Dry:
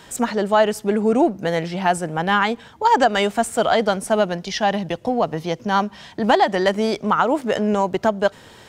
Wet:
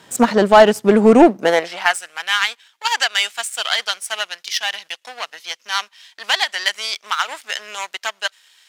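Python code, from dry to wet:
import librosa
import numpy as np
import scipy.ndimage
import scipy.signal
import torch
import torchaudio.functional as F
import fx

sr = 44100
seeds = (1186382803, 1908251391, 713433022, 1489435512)

y = fx.power_curve(x, sr, exponent=1.4)
y = fx.filter_sweep_highpass(y, sr, from_hz=120.0, to_hz=2400.0, start_s=1.17, end_s=2.03, q=0.85)
y = fx.fold_sine(y, sr, drive_db=4, ceiling_db=-5.0)
y = y * 10.0 ** (3.5 / 20.0)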